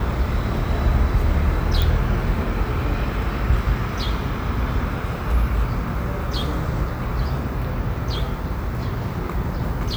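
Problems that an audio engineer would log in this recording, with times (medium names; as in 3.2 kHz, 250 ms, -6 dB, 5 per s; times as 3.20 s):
1.82 s: pop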